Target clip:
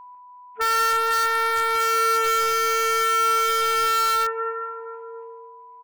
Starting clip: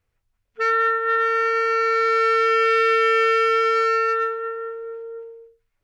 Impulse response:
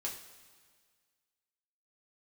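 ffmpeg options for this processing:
-filter_complex "[0:a]highpass=290,equalizer=frequency=470:width_type=q:width=4:gain=-7,equalizer=frequency=820:width_type=q:width=4:gain=10,equalizer=frequency=1700:width_type=q:width=4:gain=-6,lowpass=frequency=2400:width=0.5412,lowpass=frequency=2400:width=1.3066,aeval=exprs='val(0)+0.00631*sin(2*PI*990*n/s)':channel_layout=same,asplit=2[link_01][link_02];[link_02]adelay=148,lowpass=frequency=1700:poles=1,volume=-10dB,asplit=2[link_03][link_04];[link_04]adelay=148,lowpass=frequency=1700:poles=1,volume=0.5,asplit=2[link_05][link_06];[link_06]adelay=148,lowpass=frequency=1700:poles=1,volume=0.5,asplit=2[link_07][link_08];[link_08]adelay=148,lowpass=frequency=1700:poles=1,volume=0.5,asplit=2[link_09][link_10];[link_10]adelay=148,lowpass=frequency=1700:poles=1,volume=0.5[link_11];[link_01][link_03][link_05][link_07][link_09][link_11]amix=inputs=6:normalize=0,asplit=2[link_12][link_13];[link_13]aeval=exprs='(mod(9.44*val(0)+1,2)-1)/9.44':channel_layout=same,volume=-6.5dB[link_14];[link_12][link_14]amix=inputs=2:normalize=0"

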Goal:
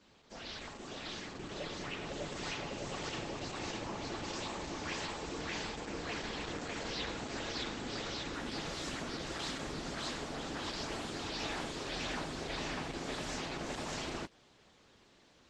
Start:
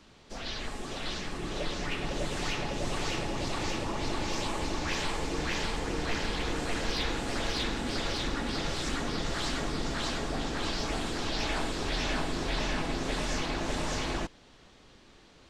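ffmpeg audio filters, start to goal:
ffmpeg -i in.wav -filter_complex "[0:a]highpass=frequency=110:poles=1,asettb=1/sr,asplit=3[link_01][link_02][link_03];[link_01]atrim=end=2.274[link_04];[link_02]atrim=start=2.27:end=4.62,asetpts=PTS-STARTPTS,afade=type=in:duration=0.004:curve=qsin,afade=type=out:start_time=2.346:duration=0.004:curve=qsin,asplit=4[link_05][link_06][link_07][link_08];[link_06]adelay=142,afreqshift=110,volume=-17dB[link_09];[link_07]adelay=284,afreqshift=220,volume=-25.4dB[link_10];[link_08]adelay=426,afreqshift=330,volume=-33.8dB[link_11];[link_05][link_09][link_10][link_11]amix=inputs=4:normalize=0,atrim=end_sample=103635[link_12];[link_03]atrim=start=4.616[link_13];[link_04][link_12]acrossfade=duration=0.004:curve1=hsin:curve2=qsin[link_14];[link_14][link_13]acrossfade=duration=0.004:curve1=qsin:curve2=hsin,volume=-5.5dB" -ar 48000 -c:a libopus -b:a 12k out.opus

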